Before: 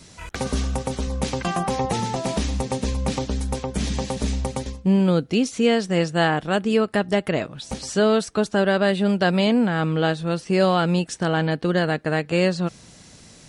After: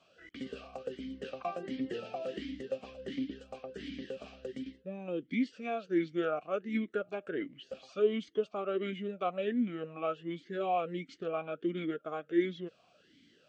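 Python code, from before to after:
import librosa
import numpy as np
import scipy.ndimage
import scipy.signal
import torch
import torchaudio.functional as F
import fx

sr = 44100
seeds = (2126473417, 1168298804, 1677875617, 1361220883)

y = fx.formant_shift(x, sr, semitones=-4)
y = fx.vowel_sweep(y, sr, vowels='a-i', hz=1.4)
y = y * 10.0 ** (-2.0 / 20.0)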